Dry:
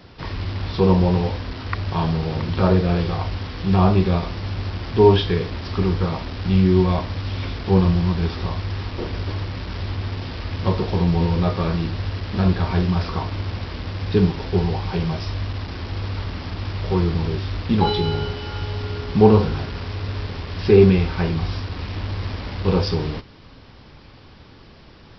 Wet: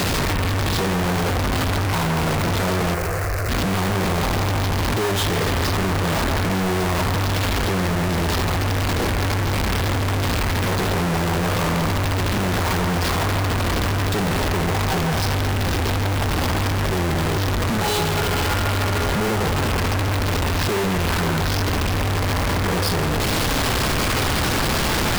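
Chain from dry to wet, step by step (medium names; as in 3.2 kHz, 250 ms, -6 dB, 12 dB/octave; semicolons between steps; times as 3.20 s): one-bit comparator; 2.94–3.49 s: static phaser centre 880 Hz, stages 6; feedback echo behind a band-pass 165 ms, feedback 65%, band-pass 1.2 kHz, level -3.5 dB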